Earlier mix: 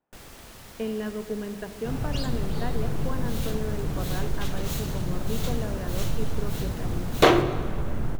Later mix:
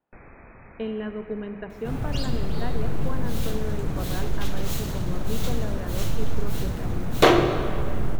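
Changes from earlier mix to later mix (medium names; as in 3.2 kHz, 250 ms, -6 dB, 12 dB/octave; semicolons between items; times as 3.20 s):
first sound: add brick-wall FIR low-pass 2.6 kHz; second sound: send +8.0 dB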